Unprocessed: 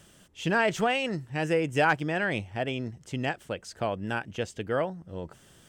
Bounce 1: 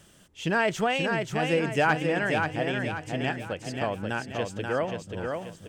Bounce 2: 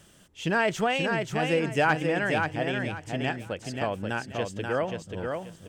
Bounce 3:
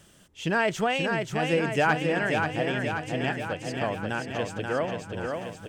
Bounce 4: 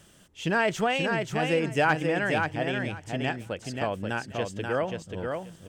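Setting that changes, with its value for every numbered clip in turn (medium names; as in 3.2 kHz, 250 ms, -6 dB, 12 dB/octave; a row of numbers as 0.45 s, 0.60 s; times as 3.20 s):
feedback delay, feedback: 42%, 26%, 62%, 17%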